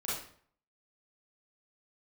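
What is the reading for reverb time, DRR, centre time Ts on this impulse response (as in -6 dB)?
0.55 s, -9.0 dB, 58 ms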